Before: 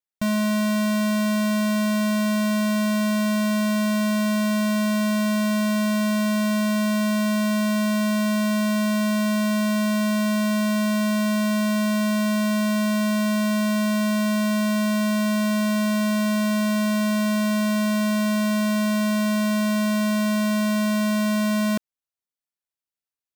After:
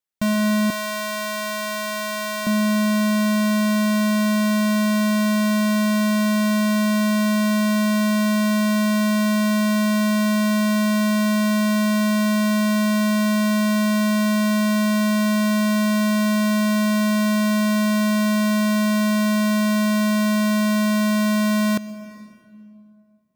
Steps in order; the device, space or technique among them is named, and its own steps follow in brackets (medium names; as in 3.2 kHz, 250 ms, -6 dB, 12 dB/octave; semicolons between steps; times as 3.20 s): compressed reverb return (on a send at -11 dB: reverberation RT60 2.2 s, pre-delay 90 ms + compression, threshold -22 dBFS, peak gain reduction 6 dB); 0.70–2.47 s: on the sum: Bessel high-pass 490 Hz, order 4; trim +2.5 dB